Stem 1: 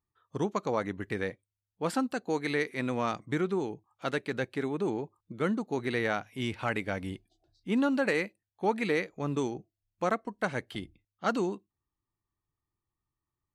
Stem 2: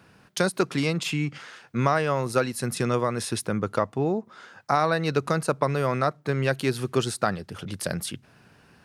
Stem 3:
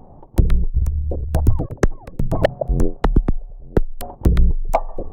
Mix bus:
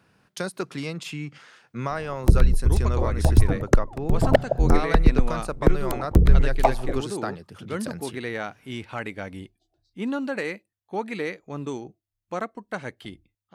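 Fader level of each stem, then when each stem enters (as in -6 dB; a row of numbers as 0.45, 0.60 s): -1.0, -6.5, -1.0 dB; 2.30, 0.00, 1.90 s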